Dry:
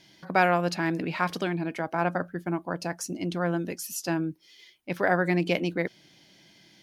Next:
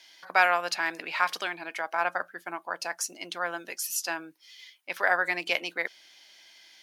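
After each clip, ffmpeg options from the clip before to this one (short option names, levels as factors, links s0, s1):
-af "highpass=940,volume=1.58"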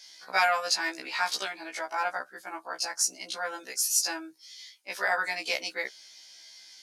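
-af "lowpass=7700,aexciter=amount=3.7:drive=6:freq=4200,afftfilt=real='re*1.73*eq(mod(b,3),0)':imag='im*1.73*eq(mod(b,3),0)':win_size=2048:overlap=0.75"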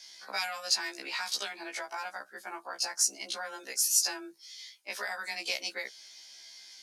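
-filter_complex "[0:a]acrossover=split=150|3000[s0][s1][s2];[s1]acompressor=threshold=0.0158:ratio=6[s3];[s0][s3][s2]amix=inputs=3:normalize=0,afreqshift=18"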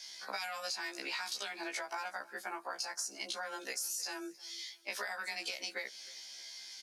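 -af "alimiter=limit=0.0708:level=0:latency=1:release=62,acompressor=threshold=0.0126:ratio=6,aecho=1:1:313|626:0.075|0.0247,volume=1.26"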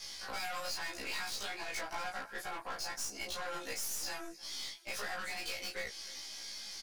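-filter_complex "[0:a]aeval=exprs='(tanh(126*val(0)+0.55)-tanh(0.55))/126':c=same,flanger=delay=1.5:depth=7.1:regen=-57:speed=1.2:shape=sinusoidal,asplit=2[s0][s1];[s1]adelay=19,volume=0.794[s2];[s0][s2]amix=inputs=2:normalize=0,volume=2.51"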